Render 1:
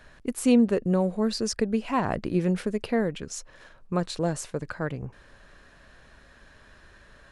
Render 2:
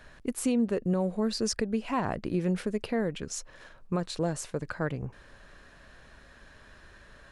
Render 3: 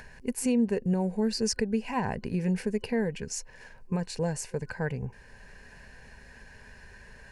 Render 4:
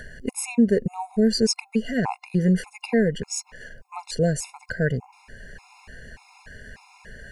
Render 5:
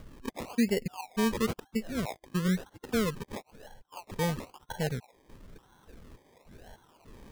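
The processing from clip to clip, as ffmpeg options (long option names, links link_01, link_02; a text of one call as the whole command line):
ffmpeg -i in.wav -af "alimiter=limit=-18.5dB:level=0:latency=1:release=303" out.wav
ffmpeg -i in.wav -af "superequalizer=6b=0.316:8b=0.501:10b=0.251:13b=0.355,acompressor=mode=upward:threshold=-45dB:ratio=2.5,volume=1.5dB" out.wav
ffmpeg -i in.wav -af "afftfilt=real='re*gt(sin(2*PI*1.7*pts/sr)*(1-2*mod(floor(b*sr/1024/700),2)),0)':imag='im*gt(sin(2*PI*1.7*pts/sr)*(1-2*mod(floor(b*sr/1024/700),2)),0)':win_size=1024:overlap=0.75,volume=8.5dB" out.wav
ffmpeg -i in.wav -af "acrusher=samples=25:mix=1:aa=0.000001:lfo=1:lforange=15:lforate=1,volume=-8.5dB" out.wav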